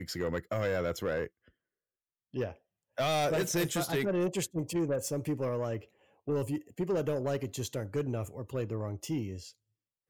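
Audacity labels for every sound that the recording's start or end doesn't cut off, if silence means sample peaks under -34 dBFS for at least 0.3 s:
2.360000	2.500000	sound
2.980000	5.770000	sound
6.280000	9.340000	sound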